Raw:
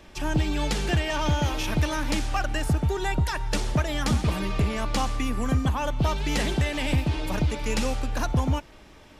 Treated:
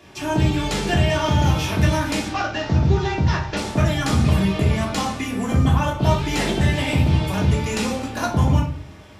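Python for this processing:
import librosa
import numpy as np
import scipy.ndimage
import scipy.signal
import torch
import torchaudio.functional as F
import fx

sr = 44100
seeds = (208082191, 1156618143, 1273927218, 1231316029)

y = fx.cvsd(x, sr, bps=32000, at=(2.28, 3.57))
y = scipy.signal.sosfilt(scipy.signal.butter(4, 75.0, 'highpass', fs=sr, output='sos'), y)
y = fx.room_shoebox(y, sr, seeds[0], volume_m3=370.0, walls='furnished', distance_m=3.2)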